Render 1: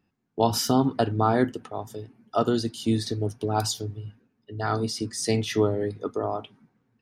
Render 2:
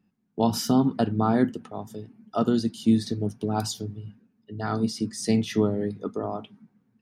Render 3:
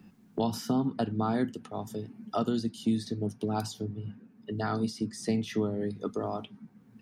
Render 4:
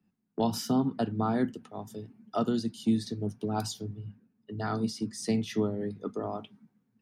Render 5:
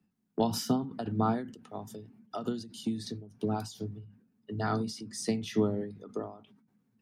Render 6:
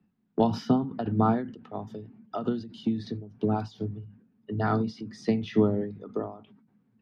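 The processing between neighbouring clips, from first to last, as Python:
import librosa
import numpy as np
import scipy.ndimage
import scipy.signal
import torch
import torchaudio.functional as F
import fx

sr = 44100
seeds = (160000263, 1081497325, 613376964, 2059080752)

y1 = fx.peak_eq(x, sr, hz=200.0, db=12.5, octaves=0.64)
y1 = F.gain(torch.from_numpy(y1), -3.5).numpy()
y2 = fx.band_squash(y1, sr, depth_pct=70)
y2 = F.gain(torch.from_numpy(y2), -6.0).numpy()
y3 = fx.band_widen(y2, sr, depth_pct=70)
y4 = fx.end_taper(y3, sr, db_per_s=100.0)
y4 = F.gain(torch.from_numpy(y4), 1.5).numpy()
y5 = fx.air_absorb(y4, sr, metres=270.0)
y5 = F.gain(torch.from_numpy(y5), 5.5).numpy()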